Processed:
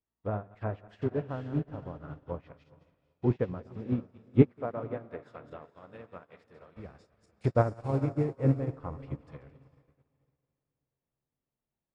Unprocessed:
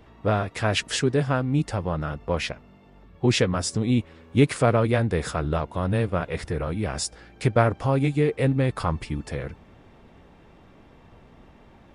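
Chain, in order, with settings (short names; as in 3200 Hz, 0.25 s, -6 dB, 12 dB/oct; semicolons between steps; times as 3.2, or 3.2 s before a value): regenerating reverse delay 0.11 s, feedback 46%, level -9.5 dB; 4.42–6.77 HPF 390 Hz 6 dB/oct; treble ducked by the level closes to 1100 Hz, closed at -21 dBFS; diffused feedback echo 0.466 s, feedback 51%, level -9 dB; upward expander 2.5:1, over -42 dBFS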